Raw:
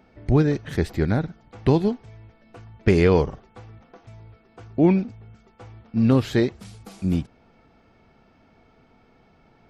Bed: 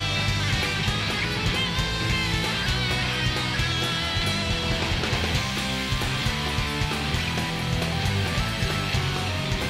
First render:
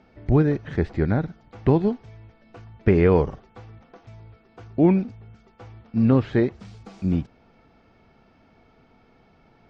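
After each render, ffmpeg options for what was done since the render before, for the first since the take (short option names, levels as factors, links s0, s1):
-filter_complex "[0:a]lowpass=f=6600:w=0.5412,lowpass=f=6600:w=1.3066,acrossover=split=2500[s0][s1];[s1]acompressor=threshold=0.00158:ratio=4:attack=1:release=60[s2];[s0][s2]amix=inputs=2:normalize=0"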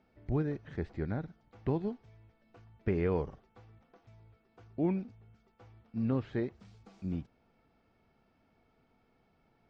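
-af "volume=0.211"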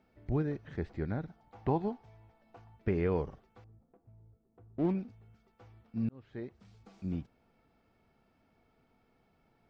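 -filter_complex "[0:a]asettb=1/sr,asplit=3[s0][s1][s2];[s0]atrim=end=1.294[s3];[s1]atrim=start=1.29:end=2.76,asetpts=PTS-STARTPTS,afade=t=in:d=0.004:c=qsin,afade=t=out:st=1.466:d=0.004:c=qsin,equalizer=f=820:w=2.1:g=10.5[s4];[s2]atrim=start=2.756[s5];[s3][s4]acrossfade=d=0.004:c1=hsin:c2=qsin[s6];[s6][s5]acrossfade=d=0.004:c1=qsin:c2=hsin,asettb=1/sr,asplit=3[s7][s8][s9];[s7]atrim=end=3.644[s10];[s8]atrim=start=3.64:end=4.95,asetpts=PTS-STARTPTS,afade=t=in:d=0.004:c=qsin,afade=t=out:st=1.306:d=0.004:c=qsin,adynamicsmooth=sensitivity=7.5:basefreq=510[s11];[s9]atrim=start=4.946[s12];[s10][s11]acrossfade=d=0.004:c1=hsin:c2=qsin[s13];[s13][s12]acrossfade=d=0.004:c1=qsin:c2=hsin,asplit=2[s14][s15];[s14]atrim=end=6.09,asetpts=PTS-STARTPTS,afade=t=out:st=6.086:d=0.004:c=hsin[s16];[s15]atrim=start=6.09,asetpts=PTS-STARTPTS,afade=t=in:d=0.81[s17];[s16][s17]concat=n=2:v=0:a=1"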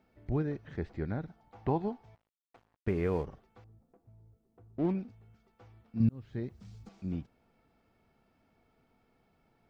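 -filter_complex "[0:a]asettb=1/sr,asplit=3[s0][s1][s2];[s0]atrim=end=2.154[s3];[s1]atrim=start=2.15:end=3.26,asetpts=PTS-STARTPTS,afade=t=in:d=0.004:c=qsin,afade=t=out:st=1.106:d=0.004:c=qsin,aeval=exprs='sgn(val(0))*max(abs(val(0))-0.00211,0)':c=same[s4];[s2]atrim=start=3.256[s5];[s3][s4]acrossfade=d=0.004:c1=hsin:c2=qsin[s6];[s6][s5]acrossfade=d=0.004:c1=qsin:c2=hsin,asettb=1/sr,asplit=3[s7][s8][s9];[s7]atrim=end=6.004[s10];[s8]atrim=start=6:end=6.89,asetpts=PTS-STARTPTS,afade=t=in:d=0.004:c=qsin,afade=t=out:st=0.886:d=0.004:c=qsin,bass=f=250:g=10,treble=f=4000:g=8[s11];[s9]atrim=start=6.886[s12];[s10][s11]acrossfade=d=0.004:c1=hsin:c2=qsin[s13];[s13][s12]acrossfade=d=0.004:c1=qsin:c2=hsin"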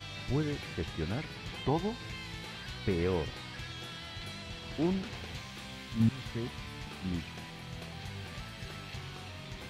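-filter_complex "[1:a]volume=0.126[s0];[0:a][s0]amix=inputs=2:normalize=0"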